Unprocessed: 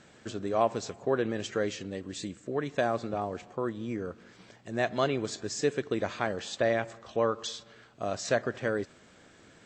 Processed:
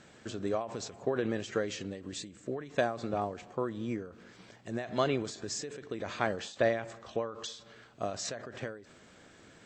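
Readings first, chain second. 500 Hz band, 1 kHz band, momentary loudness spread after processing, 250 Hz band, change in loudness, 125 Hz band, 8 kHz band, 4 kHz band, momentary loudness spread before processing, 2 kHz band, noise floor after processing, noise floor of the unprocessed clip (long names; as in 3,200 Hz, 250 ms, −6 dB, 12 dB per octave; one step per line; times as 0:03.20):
−4.0 dB, −4.0 dB, 12 LU, −3.0 dB, −3.5 dB, −3.0 dB, −1.5 dB, −2.5 dB, 10 LU, −4.0 dB, −57 dBFS, −57 dBFS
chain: every ending faded ahead of time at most 100 dB per second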